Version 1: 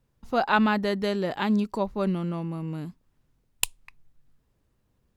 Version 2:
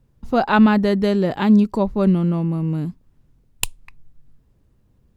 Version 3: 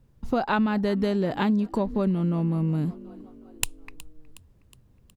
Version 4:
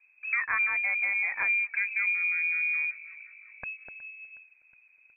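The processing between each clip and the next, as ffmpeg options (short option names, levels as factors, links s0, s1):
-af "lowshelf=f=440:g=10,volume=1.33"
-filter_complex "[0:a]asplit=5[s0][s1][s2][s3][s4];[s1]adelay=366,afreqshift=37,volume=0.0631[s5];[s2]adelay=732,afreqshift=74,volume=0.0359[s6];[s3]adelay=1098,afreqshift=111,volume=0.0204[s7];[s4]adelay=1464,afreqshift=148,volume=0.0117[s8];[s0][s5][s6][s7][s8]amix=inputs=5:normalize=0,acompressor=threshold=0.0891:ratio=6"
-filter_complex "[0:a]asplit=2[s0][s1];[s1]asoftclip=type=tanh:threshold=0.106,volume=0.501[s2];[s0][s2]amix=inputs=2:normalize=0,lowpass=f=2200:t=q:w=0.5098,lowpass=f=2200:t=q:w=0.6013,lowpass=f=2200:t=q:w=0.9,lowpass=f=2200:t=q:w=2.563,afreqshift=-2600,volume=0.447"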